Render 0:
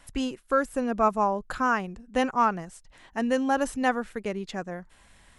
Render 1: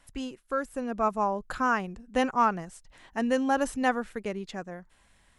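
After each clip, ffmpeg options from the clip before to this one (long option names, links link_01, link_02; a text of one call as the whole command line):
ffmpeg -i in.wav -af "dynaudnorm=framelen=260:gausssize=9:maxgain=6dB,volume=-6.5dB" out.wav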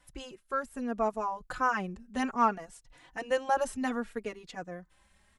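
ffmpeg -i in.wav -filter_complex "[0:a]asplit=2[link_01][link_02];[link_02]adelay=3.5,afreqshift=0.63[link_03];[link_01][link_03]amix=inputs=2:normalize=1" out.wav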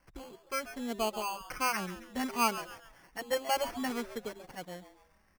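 ffmpeg -i in.wav -filter_complex "[0:a]acrusher=samples=12:mix=1:aa=0.000001,asplit=5[link_01][link_02][link_03][link_04][link_05];[link_02]adelay=136,afreqshift=150,volume=-13dB[link_06];[link_03]adelay=272,afreqshift=300,volume=-21.9dB[link_07];[link_04]adelay=408,afreqshift=450,volume=-30.7dB[link_08];[link_05]adelay=544,afreqshift=600,volume=-39.6dB[link_09];[link_01][link_06][link_07][link_08][link_09]amix=inputs=5:normalize=0,volume=-3dB" out.wav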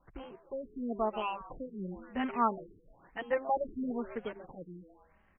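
ffmpeg -i in.wav -af "afftfilt=real='re*lt(b*sr/1024,450*pow(3400/450,0.5+0.5*sin(2*PI*1*pts/sr)))':imag='im*lt(b*sr/1024,450*pow(3400/450,0.5+0.5*sin(2*PI*1*pts/sr)))':win_size=1024:overlap=0.75,volume=1dB" out.wav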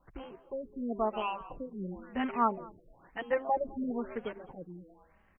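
ffmpeg -i in.wav -af "aecho=1:1:208:0.0708,volume=1dB" out.wav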